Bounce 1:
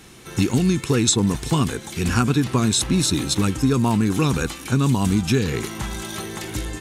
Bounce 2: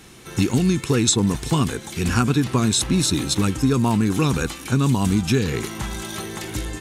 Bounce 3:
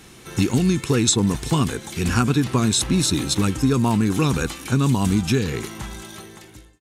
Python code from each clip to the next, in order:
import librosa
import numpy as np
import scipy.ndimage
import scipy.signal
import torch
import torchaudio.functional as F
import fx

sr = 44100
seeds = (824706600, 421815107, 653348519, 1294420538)

y1 = x
y2 = fx.fade_out_tail(y1, sr, length_s=1.57)